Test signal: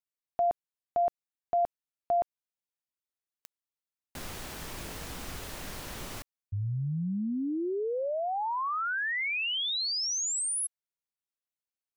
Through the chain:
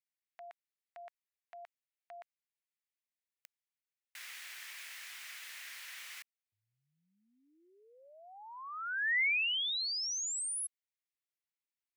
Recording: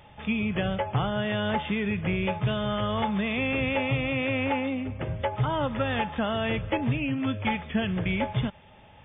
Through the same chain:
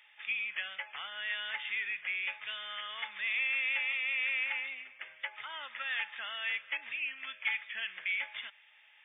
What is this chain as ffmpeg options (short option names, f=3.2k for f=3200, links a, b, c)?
-af "highpass=f=2k:t=q:w=2.5,volume=-6.5dB"